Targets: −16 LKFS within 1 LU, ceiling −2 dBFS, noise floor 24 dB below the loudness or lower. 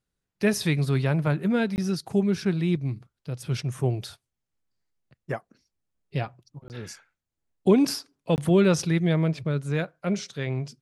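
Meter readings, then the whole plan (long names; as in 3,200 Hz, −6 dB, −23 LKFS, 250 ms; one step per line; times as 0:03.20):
number of dropouts 3; longest dropout 19 ms; integrated loudness −25.5 LKFS; sample peak −8.5 dBFS; target loudness −16.0 LKFS
→ repair the gap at 0:01.76/0:06.68/0:08.36, 19 ms
level +9.5 dB
brickwall limiter −2 dBFS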